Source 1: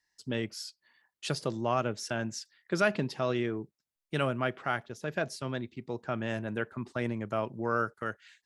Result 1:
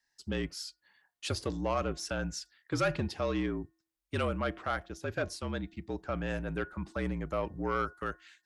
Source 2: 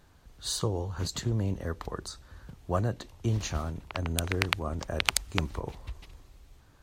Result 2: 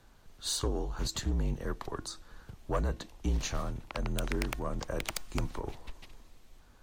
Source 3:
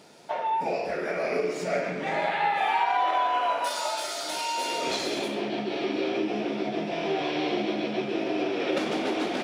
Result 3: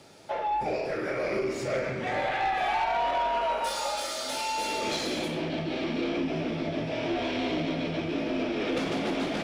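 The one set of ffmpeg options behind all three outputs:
-af "aeval=exprs='(tanh(11.2*val(0)+0.1)-tanh(0.1))/11.2':c=same,bandreject=f=375:t=h:w=4,bandreject=f=750:t=h:w=4,bandreject=f=1.125k:t=h:w=4,bandreject=f=1.5k:t=h:w=4,bandreject=f=1.875k:t=h:w=4,afreqshift=-48"

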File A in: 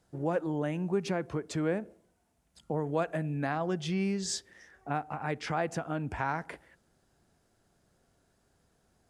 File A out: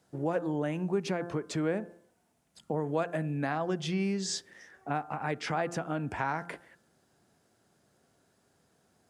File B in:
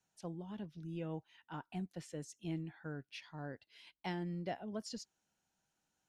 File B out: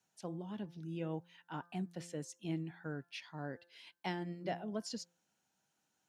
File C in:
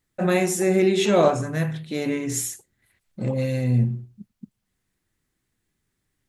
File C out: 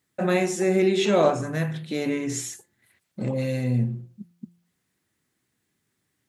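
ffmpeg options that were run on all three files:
-filter_complex "[0:a]acrossover=split=7400[a][b];[b]acompressor=threshold=-48dB:ratio=4:attack=1:release=60[c];[a][c]amix=inputs=2:normalize=0,highpass=120,bandreject=f=172.9:t=h:w=4,bandreject=f=345.8:t=h:w=4,bandreject=f=518.7:t=h:w=4,bandreject=f=691.6:t=h:w=4,bandreject=f=864.5:t=h:w=4,bandreject=f=1.0374k:t=h:w=4,bandreject=f=1.2103k:t=h:w=4,bandreject=f=1.3832k:t=h:w=4,bandreject=f=1.5561k:t=h:w=4,bandreject=f=1.729k:t=h:w=4,asplit=2[d][e];[e]acompressor=threshold=-33dB:ratio=6,volume=-2dB[f];[d][f]amix=inputs=2:normalize=0,volume=-2.5dB"

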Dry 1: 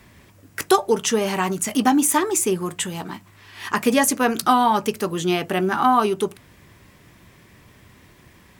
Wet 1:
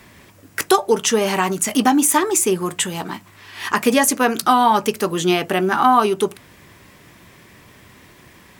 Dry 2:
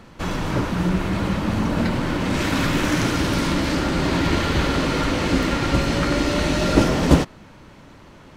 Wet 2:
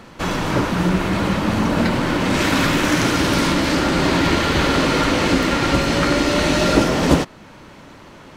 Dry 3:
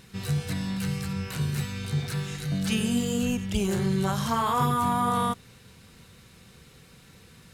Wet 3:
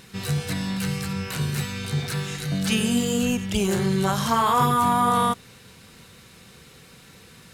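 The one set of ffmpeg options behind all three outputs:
-filter_complex "[0:a]lowshelf=f=150:g=-7.5,asplit=2[a][b];[b]alimiter=limit=-12dB:level=0:latency=1:release=426,volume=2dB[c];[a][c]amix=inputs=2:normalize=0,volume=-1.5dB"

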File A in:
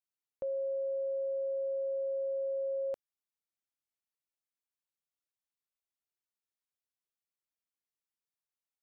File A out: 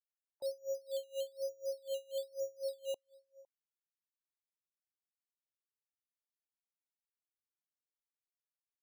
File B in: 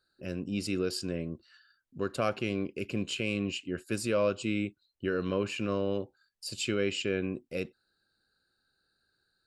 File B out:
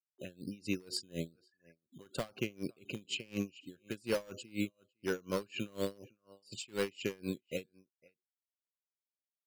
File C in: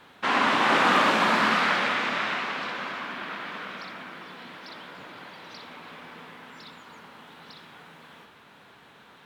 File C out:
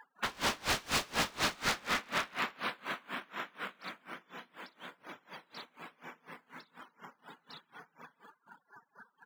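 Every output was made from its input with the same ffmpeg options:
-filter_complex "[0:a]adynamicequalizer=threshold=0.00562:dfrequency=140:dqfactor=1.2:tfrequency=140:tqfactor=1.2:attack=5:release=100:ratio=0.375:range=2:mode=boostabove:tftype=bell,afftfilt=real='re*gte(hypot(re,im),0.00631)':imag='im*gte(hypot(re,im),0.00631)':win_size=1024:overlap=0.75,lowshelf=f=100:g=-9.5,asplit=2[a][b];[b]adelay=507.3,volume=-27dB,highshelf=f=4k:g=-11.4[c];[a][c]amix=inputs=2:normalize=0,acrossover=split=790|3300[d][e][f];[d]acrusher=samples=10:mix=1:aa=0.000001:lfo=1:lforange=6:lforate=1.1[g];[e]acompressor=mode=upward:threshold=-45dB:ratio=2.5[h];[g][h][f]amix=inputs=3:normalize=0,aeval=exprs='0.0708*(abs(mod(val(0)/0.0708+3,4)-2)-1)':c=same,aeval=exprs='val(0)*pow(10,-28*(0.5-0.5*cos(2*PI*4.1*n/s))/20)':c=same"

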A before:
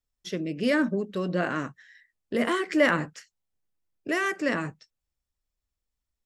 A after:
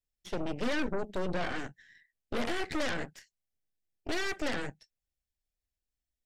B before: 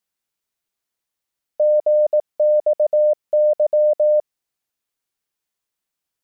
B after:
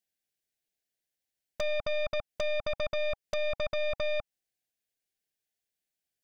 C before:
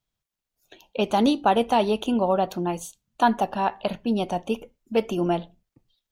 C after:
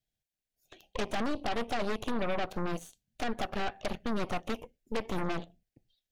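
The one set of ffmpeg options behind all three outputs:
-filter_complex "[0:a]acrossover=split=2800[a][b];[b]acompressor=threshold=-43dB:ratio=4:attack=1:release=60[c];[a][c]amix=inputs=2:normalize=0,asoftclip=type=tanh:threshold=-11.5dB,acompressor=threshold=-23dB:ratio=8,asuperstop=centerf=1100:order=20:qfactor=1.7,aeval=exprs='0.15*(cos(1*acos(clip(val(0)/0.15,-1,1)))-cos(1*PI/2))+0.0133*(cos(5*acos(clip(val(0)/0.15,-1,1)))-cos(5*PI/2))+0.0531*(cos(8*acos(clip(val(0)/0.15,-1,1)))-cos(8*PI/2))':c=same,volume=-8.5dB"

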